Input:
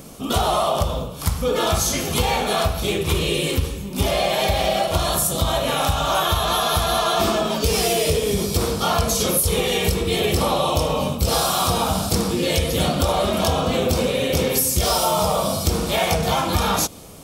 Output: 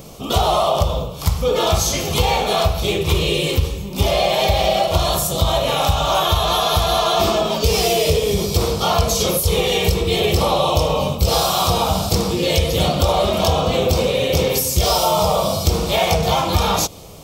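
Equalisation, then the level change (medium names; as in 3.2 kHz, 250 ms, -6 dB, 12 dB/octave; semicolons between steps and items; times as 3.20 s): fifteen-band graphic EQ 250 Hz -8 dB, 1.6 kHz -8 dB, 10 kHz -9 dB; +4.5 dB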